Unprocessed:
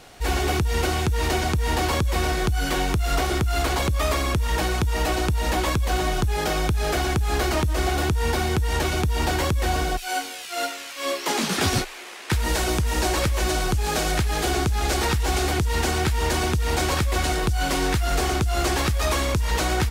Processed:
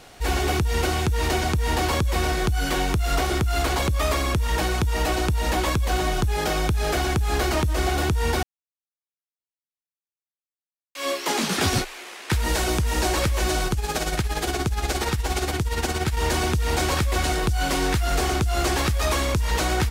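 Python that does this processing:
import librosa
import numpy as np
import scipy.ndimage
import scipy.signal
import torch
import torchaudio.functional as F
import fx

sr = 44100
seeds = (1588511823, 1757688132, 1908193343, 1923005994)

y = fx.tremolo(x, sr, hz=17.0, depth=0.58, at=(13.67, 16.17))
y = fx.edit(y, sr, fx.silence(start_s=8.43, length_s=2.52), tone=tone)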